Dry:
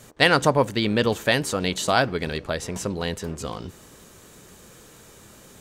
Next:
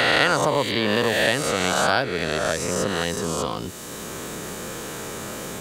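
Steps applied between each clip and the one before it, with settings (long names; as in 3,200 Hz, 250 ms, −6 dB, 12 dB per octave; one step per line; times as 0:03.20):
peak hold with a rise ahead of every peak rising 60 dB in 1.57 s
low-shelf EQ 190 Hz −3 dB
multiband upward and downward compressor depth 70%
level −2.5 dB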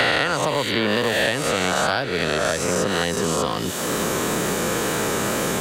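tape wow and flutter 20 cents
echo through a band-pass that steps 263 ms, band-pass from 3,000 Hz, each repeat −0.7 octaves, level −11 dB
multiband upward and downward compressor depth 100%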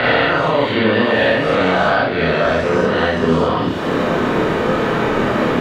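high-frequency loss of the air 350 metres
four-comb reverb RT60 0.45 s, combs from 25 ms, DRR −4.5 dB
level +2.5 dB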